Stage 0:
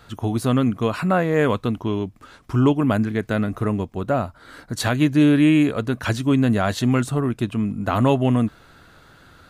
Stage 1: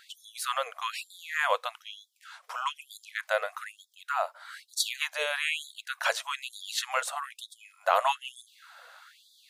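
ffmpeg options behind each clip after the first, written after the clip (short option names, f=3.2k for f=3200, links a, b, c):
-af "afftfilt=real='re*gte(b*sr/1024,460*pow(3400/460,0.5+0.5*sin(2*PI*1.1*pts/sr)))':imag='im*gte(b*sr/1024,460*pow(3400/460,0.5+0.5*sin(2*PI*1.1*pts/sr)))':win_size=1024:overlap=0.75"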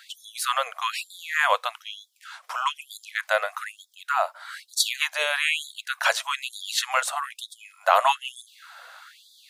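-af "highpass=f=570:w=0.5412,highpass=f=570:w=1.3066,volume=6dB"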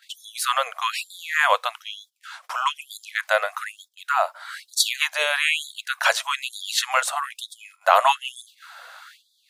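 -af "agate=range=-14dB:threshold=-51dB:ratio=16:detection=peak,volume=2.5dB"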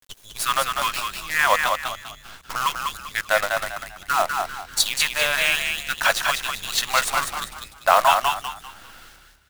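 -filter_complex "[0:a]acrusher=bits=5:dc=4:mix=0:aa=0.000001,asplit=5[a][b][c][d][e];[b]adelay=197,afreqshift=34,volume=-4.5dB[f];[c]adelay=394,afreqshift=68,volume=-14.7dB[g];[d]adelay=591,afreqshift=102,volume=-24.8dB[h];[e]adelay=788,afreqshift=136,volume=-35dB[i];[a][f][g][h][i]amix=inputs=5:normalize=0"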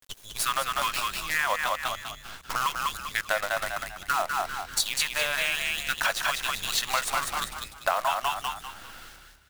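-af "acompressor=threshold=-23dB:ratio=5"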